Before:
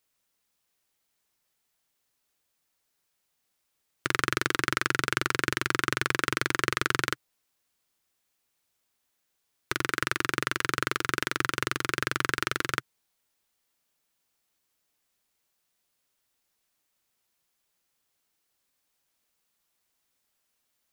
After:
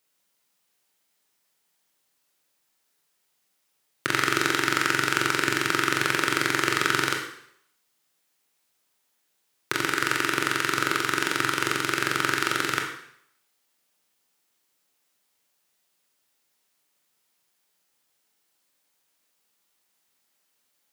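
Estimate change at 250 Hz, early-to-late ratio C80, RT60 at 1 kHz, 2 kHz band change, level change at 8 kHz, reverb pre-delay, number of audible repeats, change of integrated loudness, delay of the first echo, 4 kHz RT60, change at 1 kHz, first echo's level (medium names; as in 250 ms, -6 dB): +5.0 dB, 9.0 dB, 0.70 s, +4.0 dB, +5.0 dB, 20 ms, no echo, +4.5 dB, no echo, 0.65 s, +4.5 dB, no echo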